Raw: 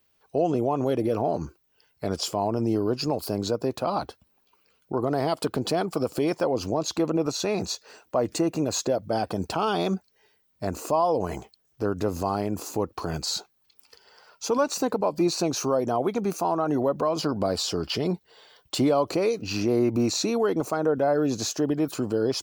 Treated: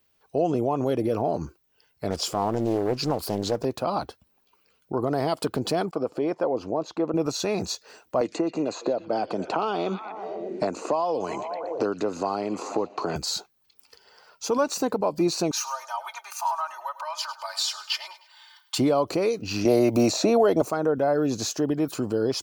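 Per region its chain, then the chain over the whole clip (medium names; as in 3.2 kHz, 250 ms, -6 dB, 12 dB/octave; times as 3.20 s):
2.10–3.65 s: companding laws mixed up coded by mu + loudspeaker Doppler distortion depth 0.53 ms
5.91–7.14 s: band-pass filter 600 Hz, Q 0.51 + expander -50 dBFS
8.21–13.16 s: cabinet simulation 250–6400 Hz, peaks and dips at 1.7 kHz -5 dB, 3.3 kHz -6 dB, 5.3 kHz -9 dB + repeats whose band climbs or falls 120 ms, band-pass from 3.1 kHz, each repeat -0.7 oct, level -9.5 dB + three bands compressed up and down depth 100%
15.51–18.78 s: elliptic high-pass 870 Hz, stop band 70 dB + comb 3.3 ms, depth 95% + feedback delay 103 ms, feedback 39%, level -15.5 dB
19.65–20.62 s: peaking EQ 630 Hz +13 dB 0.58 oct + three bands compressed up and down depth 70%
whole clip: none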